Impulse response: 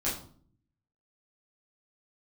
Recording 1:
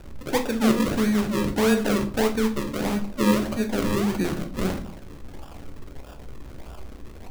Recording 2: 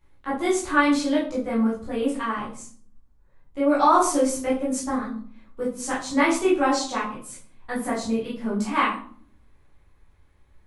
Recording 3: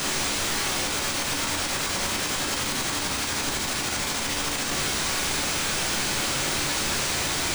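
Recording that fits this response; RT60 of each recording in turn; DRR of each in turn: 2; 0.50 s, 0.50 s, 0.50 s; 4.5 dB, -8.5 dB, -1.0 dB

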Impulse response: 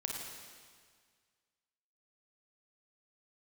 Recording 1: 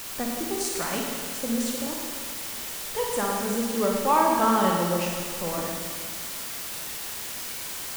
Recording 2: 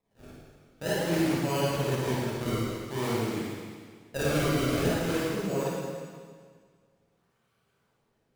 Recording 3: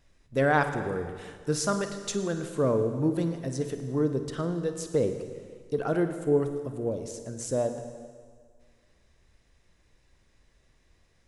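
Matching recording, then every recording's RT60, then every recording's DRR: 1; 1.8 s, 1.8 s, 1.8 s; -1.0 dB, -9.5 dB, 7.5 dB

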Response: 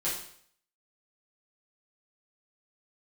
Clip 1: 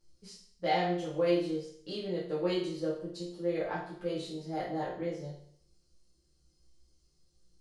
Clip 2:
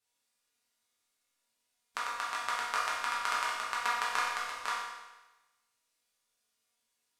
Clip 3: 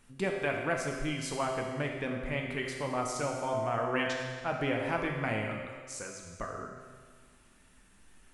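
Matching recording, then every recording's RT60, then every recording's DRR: 1; 0.60 s, 1.1 s, 1.7 s; -10.0 dB, -8.0 dB, 0.5 dB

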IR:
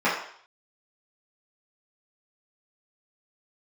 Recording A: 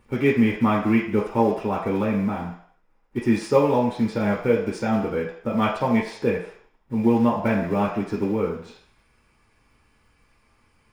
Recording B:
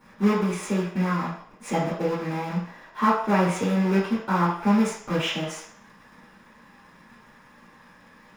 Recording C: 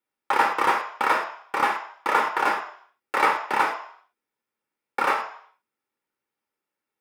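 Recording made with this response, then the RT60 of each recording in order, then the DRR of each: B; 0.55 s, 0.55 s, 0.55 s; -3.5 dB, -11.0 dB, 3.0 dB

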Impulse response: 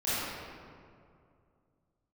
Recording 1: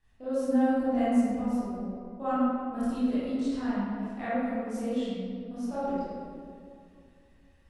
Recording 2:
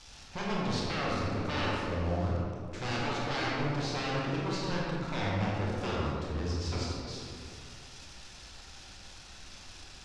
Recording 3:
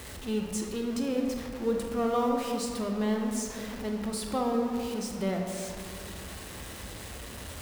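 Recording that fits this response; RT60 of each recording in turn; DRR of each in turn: 1; 2.3 s, 2.4 s, 2.4 s; -14.0 dB, -5.0 dB, 1.5 dB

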